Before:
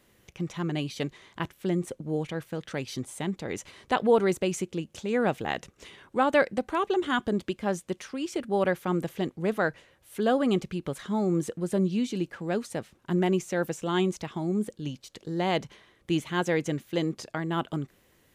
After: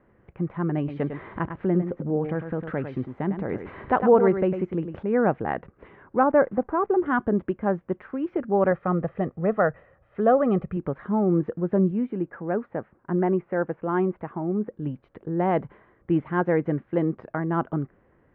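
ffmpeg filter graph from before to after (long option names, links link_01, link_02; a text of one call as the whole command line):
ffmpeg -i in.wav -filter_complex "[0:a]asettb=1/sr,asplit=3[link_01][link_02][link_03];[link_01]atrim=end=0.784[link_04];[link_02]atrim=start=0.78:end=5.03,asetpts=PTS-STARTPTS,afade=type=in:duration=0.004:curve=qsin,afade=type=out:start_time=4.246:duration=0.004:curve=qsin,highshelf=frequency=6800:gain=11.5,acompressor=mode=upward:threshold=-28dB:ratio=2.5:attack=3.2:release=140:knee=2.83:detection=peak,aecho=1:1:102:0.376,atrim=end_sample=187425[link_05];[link_03]atrim=start=5.026[link_06];[link_04][link_05]acrossfade=duration=0.004:curve1=hsin:curve2=qsin[link_07];[link_07][link_06]acrossfade=duration=0.004:curve1=qsin:curve2=hsin,asettb=1/sr,asplit=3[link_08][link_09][link_10];[link_08]atrim=end=6.234[link_11];[link_09]atrim=start=6.23:end=7.06,asetpts=PTS-STARTPTS,afade=type=in:duration=0.004:curve=qsin,afade=type=out:start_time=0.826:duration=0.004:curve=qsin,lowpass=1400,acrusher=bits=9:dc=4:mix=0:aa=0.000001[link_12];[link_10]atrim=start=7.056[link_13];[link_11][link_12]acrossfade=duration=0.004:curve1=hsin:curve2=qsin[link_14];[link_14][link_13]acrossfade=duration=0.004:curve1=qsin:curve2=hsin,asettb=1/sr,asplit=3[link_15][link_16][link_17];[link_15]atrim=end=8.714[link_18];[link_16]atrim=start=8.71:end=10.77,asetpts=PTS-STARTPTS,afade=type=in:duration=0.004:curve=qsin,afade=type=out:start_time=2.056:duration=0.004:curve=qsin,aecho=1:1:1.6:0.5,atrim=end_sample=90846,acrusher=bits=8:mode=log:mix=0:aa=0.000001[link_19];[link_17]atrim=start=10.766[link_20];[link_18][link_19]acrossfade=duration=0.004:curve1=hsin:curve2=qsin[link_21];[link_21][link_20]acrossfade=duration=0.004:curve1=qsin:curve2=hsin,asettb=1/sr,asplit=3[link_22][link_23][link_24];[link_22]atrim=end=11.914[link_25];[link_23]atrim=start=11.91:end=14.74,asetpts=PTS-STARTPTS,afade=type=in:duration=0.004:curve=qsin,afade=type=out:start_time=2.826:duration=0.004:curve=qsin,lowpass=2500,lowshelf=frequency=230:gain=-6[link_26];[link_24]atrim=start=14.736[link_27];[link_25][link_26]acrossfade=duration=0.004:curve1=hsin:curve2=qsin[link_28];[link_28][link_27]acrossfade=duration=0.004:curve1=qsin:curve2=hsin,lowpass=frequency=1700:width=0.5412,lowpass=frequency=1700:width=1.3066,aemphasis=mode=reproduction:type=50fm,volume=4dB" out.wav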